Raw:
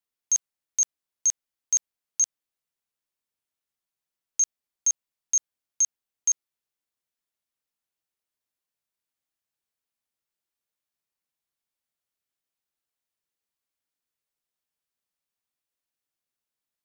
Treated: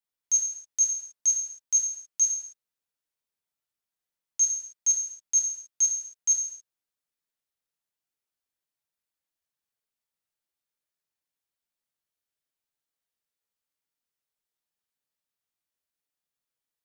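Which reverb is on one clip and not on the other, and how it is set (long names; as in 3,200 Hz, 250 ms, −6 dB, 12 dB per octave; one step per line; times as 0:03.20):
reverb whose tail is shaped and stops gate 300 ms falling, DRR −0.5 dB
level −5 dB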